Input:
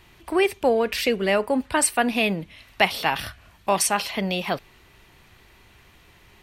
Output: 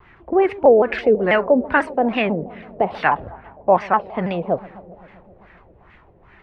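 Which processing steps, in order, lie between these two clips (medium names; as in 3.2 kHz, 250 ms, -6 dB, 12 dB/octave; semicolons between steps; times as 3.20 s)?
on a send: feedback echo behind a low-pass 131 ms, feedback 74%, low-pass 770 Hz, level -17.5 dB; on the sum: LFO low-pass sine 2.4 Hz 500–1900 Hz; 3.08–4.02 s: Gaussian low-pass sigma 1.9 samples; vibrato with a chosen wave saw down 6.1 Hz, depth 160 cents; trim +2.5 dB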